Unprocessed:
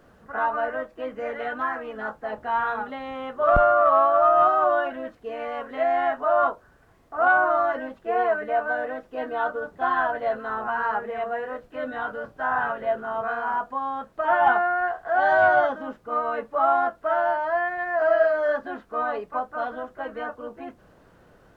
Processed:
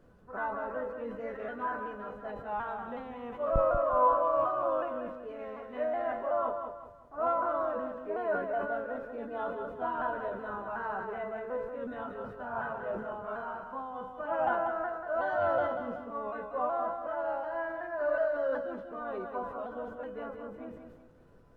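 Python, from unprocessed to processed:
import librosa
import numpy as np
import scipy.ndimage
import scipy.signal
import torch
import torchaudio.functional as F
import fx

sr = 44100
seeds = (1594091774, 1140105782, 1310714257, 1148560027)

y = fx.pitch_ramps(x, sr, semitones=-2.0, every_ms=371)
y = fx.low_shelf(y, sr, hz=490.0, db=10.5)
y = fx.comb_fb(y, sr, f0_hz=500.0, decay_s=0.42, harmonics='all', damping=0.0, mix_pct=80)
y = fx.echo_feedback(y, sr, ms=188, feedback_pct=35, wet_db=-7)
y = fx.sustainer(y, sr, db_per_s=64.0)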